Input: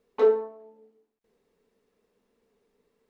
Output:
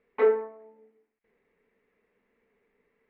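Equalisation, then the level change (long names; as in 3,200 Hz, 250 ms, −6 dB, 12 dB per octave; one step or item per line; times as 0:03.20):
low-pass with resonance 2,100 Hz, resonance Q 4.1
−2.0 dB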